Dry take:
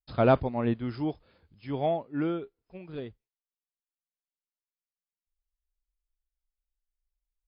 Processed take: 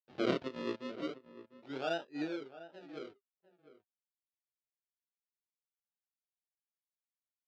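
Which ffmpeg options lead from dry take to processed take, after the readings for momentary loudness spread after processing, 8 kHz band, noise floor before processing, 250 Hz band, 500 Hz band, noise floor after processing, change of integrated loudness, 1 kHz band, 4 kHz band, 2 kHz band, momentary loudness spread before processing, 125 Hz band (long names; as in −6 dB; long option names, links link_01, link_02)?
17 LU, can't be measured, below −85 dBFS, −9.0 dB, −10.0 dB, below −85 dBFS, −10.5 dB, −12.0 dB, +1.5 dB, −3.0 dB, 22 LU, −19.0 dB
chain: -filter_complex "[0:a]anlmdn=0.001,adynamicequalizer=threshold=0.02:dfrequency=660:dqfactor=1.1:tfrequency=660:tqfactor=1.1:attack=5:release=100:ratio=0.375:range=1.5:mode=cutabove:tftype=bell,flanger=delay=19.5:depth=4.5:speed=1.3,acrusher=samples=39:mix=1:aa=0.000001:lfo=1:lforange=39:lforate=0.36,highpass=290,equalizer=frequency=360:width_type=q:width=4:gain=4,equalizer=frequency=1100:width_type=q:width=4:gain=-6,equalizer=frequency=2000:width_type=q:width=4:gain=-4,lowpass=frequency=4300:width=0.5412,lowpass=frequency=4300:width=1.3066,asplit=2[link_01][link_02];[link_02]adelay=699.7,volume=-15dB,highshelf=frequency=4000:gain=-15.7[link_03];[link_01][link_03]amix=inputs=2:normalize=0,volume=-4.5dB"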